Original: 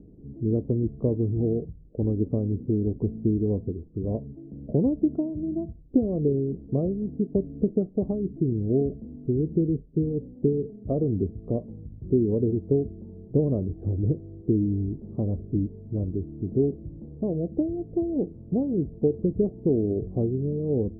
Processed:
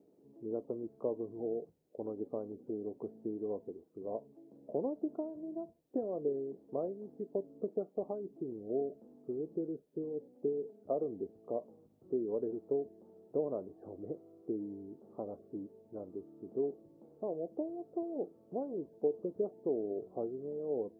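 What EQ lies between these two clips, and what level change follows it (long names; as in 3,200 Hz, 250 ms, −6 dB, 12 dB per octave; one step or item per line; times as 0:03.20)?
high-pass filter 890 Hz 12 dB per octave
+4.5 dB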